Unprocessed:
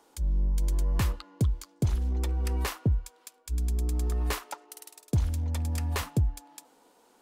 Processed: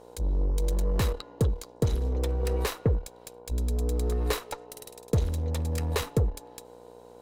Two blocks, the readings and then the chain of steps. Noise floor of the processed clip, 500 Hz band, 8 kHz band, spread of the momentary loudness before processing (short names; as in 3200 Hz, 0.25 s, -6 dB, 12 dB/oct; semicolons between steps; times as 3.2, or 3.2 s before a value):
-51 dBFS, +10.0 dB, +0.5 dB, 12 LU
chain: buzz 60 Hz, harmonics 17, -55 dBFS 0 dB/oct; added harmonics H 8 -21 dB, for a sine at -17.5 dBFS; small resonant body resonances 470/3900 Hz, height 13 dB, ringing for 35 ms